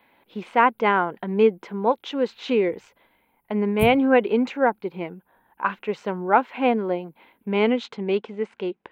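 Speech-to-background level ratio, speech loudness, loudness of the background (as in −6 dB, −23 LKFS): 10.0 dB, −23.0 LKFS, −33.0 LKFS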